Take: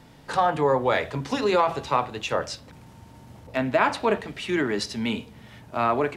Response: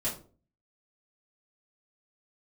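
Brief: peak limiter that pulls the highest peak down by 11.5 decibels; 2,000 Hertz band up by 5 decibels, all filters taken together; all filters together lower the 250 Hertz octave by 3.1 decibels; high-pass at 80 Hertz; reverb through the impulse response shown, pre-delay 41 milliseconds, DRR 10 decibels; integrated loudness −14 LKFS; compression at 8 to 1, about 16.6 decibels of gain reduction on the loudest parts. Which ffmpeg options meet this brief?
-filter_complex "[0:a]highpass=80,equalizer=frequency=250:width_type=o:gain=-4,equalizer=frequency=2000:width_type=o:gain=6.5,acompressor=threshold=-33dB:ratio=8,alimiter=level_in=3.5dB:limit=-24dB:level=0:latency=1,volume=-3.5dB,asplit=2[link_01][link_02];[1:a]atrim=start_sample=2205,adelay=41[link_03];[link_02][link_03]afir=irnorm=-1:irlink=0,volume=-15.5dB[link_04];[link_01][link_04]amix=inputs=2:normalize=0,volume=25dB"

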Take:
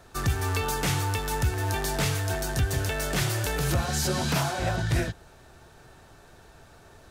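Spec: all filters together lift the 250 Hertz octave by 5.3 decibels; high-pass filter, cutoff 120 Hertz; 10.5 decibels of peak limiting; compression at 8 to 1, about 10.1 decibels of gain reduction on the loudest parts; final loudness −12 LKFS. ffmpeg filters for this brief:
ffmpeg -i in.wav -af "highpass=120,equalizer=frequency=250:width_type=o:gain=8.5,acompressor=threshold=-31dB:ratio=8,volume=26dB,alimiter=limit=-3dB:level=0:latency=1" out.wav

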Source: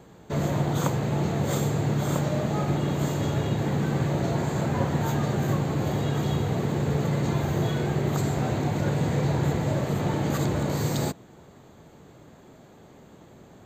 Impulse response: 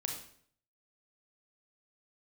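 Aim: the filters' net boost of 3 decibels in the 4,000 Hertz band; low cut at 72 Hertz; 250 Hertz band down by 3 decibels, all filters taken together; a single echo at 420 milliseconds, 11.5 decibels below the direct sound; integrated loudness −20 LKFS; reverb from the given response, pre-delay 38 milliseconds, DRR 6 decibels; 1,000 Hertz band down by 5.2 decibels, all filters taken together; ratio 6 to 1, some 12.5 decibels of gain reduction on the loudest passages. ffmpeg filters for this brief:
-filter_complex "[0:a]highpass=72,equalizer=frequency=250:width_type=o:gain=-4.5,equalizer=frequency=1000:width_type=o:gain=-7,equalizer=frequency=4000:width_type=o:gain=4,acompressor=threshold=-37dB:ratio=6,aecho=1:1:420:0.266,asplit=2[link_01][link_02];[1:a]atrim=start_sample=2205,adelay=38[link_03];[link_02][link_03]afir=irnorm=-1:irlink=0,volume=-7.5dB[link_04];[link_01][link_04]amix=inputs=2:normalize=0,volume=19.5dB"

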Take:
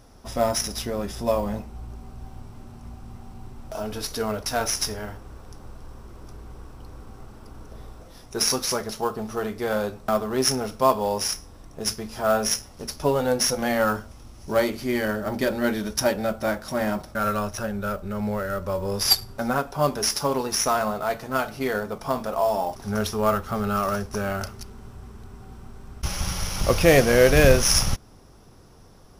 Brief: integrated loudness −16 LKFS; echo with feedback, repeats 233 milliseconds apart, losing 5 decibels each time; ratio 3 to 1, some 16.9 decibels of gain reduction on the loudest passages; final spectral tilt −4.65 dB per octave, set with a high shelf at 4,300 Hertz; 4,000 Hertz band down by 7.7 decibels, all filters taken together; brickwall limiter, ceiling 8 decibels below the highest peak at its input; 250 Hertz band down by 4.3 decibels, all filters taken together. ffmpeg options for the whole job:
ffmpeg -i in.wav -af "equalizer=frequency=250:width_type=o:gain=-5.5,equalizer=frequency=4000:width_type=o:gain=-6.5,highshelf=frequency=4300:gain=-6,acompressor=threshold=-36dB:ratio=3,alimiter=level_in=4.5dB:limit=-24dB:level=0:latency=1,volume=-4.5dB,aecho=1:1:233|466|699|932|1165|1398|1631:0.562|0.315|0.176|0.0988|0.0553|0.031|0.0173,volume=22.5dB" out.wav

